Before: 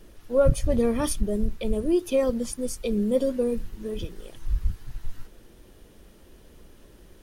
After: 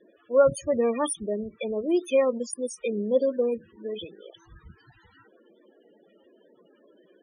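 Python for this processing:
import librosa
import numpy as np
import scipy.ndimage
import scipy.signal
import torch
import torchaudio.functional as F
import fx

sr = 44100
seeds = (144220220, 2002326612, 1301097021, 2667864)

y = fx.weighting(x, sr, curve='A')
y = fx.spec_topn(y, sr, count=16)
y = y * librosa.db_to_amplitude(4.5)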